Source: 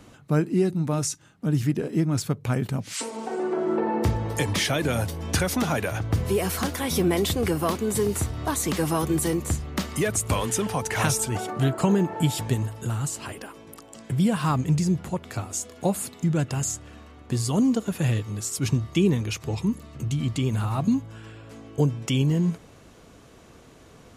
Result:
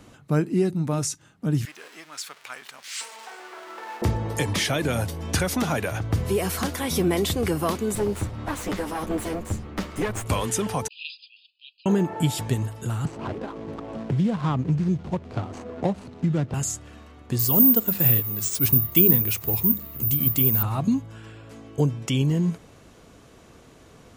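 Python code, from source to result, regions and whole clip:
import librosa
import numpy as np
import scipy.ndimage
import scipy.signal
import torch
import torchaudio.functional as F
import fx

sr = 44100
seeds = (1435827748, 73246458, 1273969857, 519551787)

y = fx.chain(x, sr, fx.zero_step(step_db=-34.5),
    fx.highpass(hz=1400.0, slope=12),
    fx.high_shelf(hz=8100.0, db=-9.5), at=(1.65, 4.02))
y = fx.chain(y, sr, fx.lower_of_two(delay_ms=9.9),
    fx.high_shelf(hz=4100.0, db=-10.0), at=(7.95, 10.26))
y = fx.chain(y, sr, fx.brickwall_bandpass(low_hz=2400.0, high_hz=5100.0),
    fx.high_shelf(hz=3700.0, db=-10.0),
    fx.band_widen(depth_pct=100), at=(10.88, 11.86))
y = fx.chain(y, sr, fx.median_filter(points=25),
    fx.lowpass(hz=6300.0, slope=12),
    fx.band_squash(depth_pct=70), at=(13.05, 16.54))
y = fx.chain(y, sr, fx.high_shelf(hz=11000.0, db=-6.0),
    fx.hum_notches(base_hz=50, count=4),
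    fx.resample_bad(factor=3, down='none', up='zero_stuff'), at=(17.39, 20.63))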